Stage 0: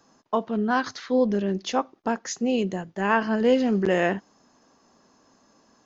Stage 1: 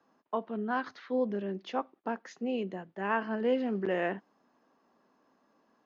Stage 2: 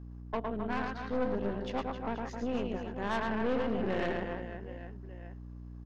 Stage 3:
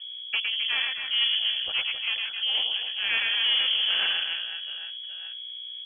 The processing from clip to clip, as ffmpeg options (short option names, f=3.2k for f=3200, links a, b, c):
-filter_complex "[0:a]acrossover=split=170 3600:gain=0.2 1 0.0891[a][b][c];[a][b][c]amix=inputs=3:normalize=0,volume=-8dB"
-af "aecho=1:1:110|264|479.6|781.4|1204:0.631|0.398|0.251|0.158|0.1,aeval=exprs='val(0)+0.00891*(sin(2*PI*60*n/s)+sin(2*PI*2*60*n/s)/2+sin(2*PI*3*60*n/s)/3+sin(2*PI*4*60*n/s)/4+sin(2*PI*5*60*n/s)/5)':c=same,aeval=exprs='(tanh(25.1*val(0)+0.75)-tanh(0.75))/25.1':c=same,volume=1.5dB"
-af "lowpass=f=2.9k:t=q:w=0.5098,lowpass=f=2.9k:t=q:w=0.6013,lowpass=f=2.9k:t=q:w=0.9,lowpass=f=2.9k:t=q:w=2.563,afreqshift=-3400,volume=6.5dB"